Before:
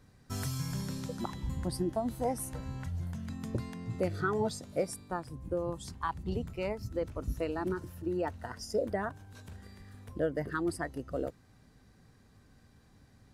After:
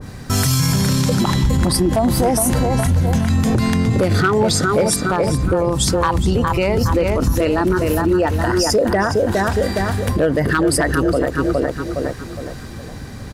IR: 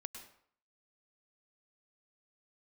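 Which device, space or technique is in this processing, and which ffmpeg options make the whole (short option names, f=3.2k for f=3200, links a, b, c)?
loud club master: -filter_complex "[0:a]asettb=1/sr,asplit=3[a][b][c];[a]atrim=end=4.514[d];[b]atrim=start=4.51:end=5.5,asetpts=PTS-STARTPTS,afade=t=in:d=0.004:c=qsin,afade=t=out:st=0.986:d=0.004:c=qsin,highshelf=f=8.6k:g=-5.5[e];[c]atrim=start=5.496[f];[d][e]acrossfade=d=0.004:c1=hsin:c2=qsin[g];[g][f]acrossfade=d=0.004:c1=qsin:c2=hsin,asplit=2[h][i];[i]adelay=413,lowpass=f=3.7k:p=1,volume=-7.5dB,asplit=2[j][k];[k]adelay=413,lowpass=f=3.7k:p=1,volume=0.4,asplit=2[l][m];[m]adelay=413,lowpass=f=3.7k:p=1,volume=0.4,asplit=2[n][o];[o]adelay=413,lowpass=f=3.7k:p=1,volume=0.4,asplit=2[p][q];[q]adelay=413,lowpass=f=3.7k:p=1,volume=0.4[r];[h][j][l][n][p][r]amix=inputs=6:normalize=0,acompressor=threshold=-37dB:ratio=1.5,asoftclip=type=hard:threshold=-27dB,alimiter=level_in=35.5dB:limit=-1dB:release=50:level=0:latency=1,adynamicequalizer=threshold=0.0447:dfrequency=1500:dqfactor=0.7:tfrequency=1500:tqfactor=0.7:attack=5:release=100:ratio=0.375:range=1.5:mode=boostabove:tftype=highshelf,volume=-8dB"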